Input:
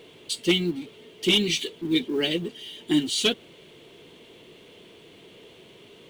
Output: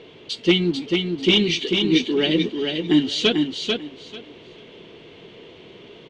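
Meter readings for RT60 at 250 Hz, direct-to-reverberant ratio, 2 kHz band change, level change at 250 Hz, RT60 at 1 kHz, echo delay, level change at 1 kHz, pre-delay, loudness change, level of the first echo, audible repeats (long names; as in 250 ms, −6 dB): no reverb audible, no reverb audible, +5.0 dB, +6.5 dB, no reverb audible, 442 ms, +6.0 dB, no reverb audible, +4.5 dB, −4.5 dB, 3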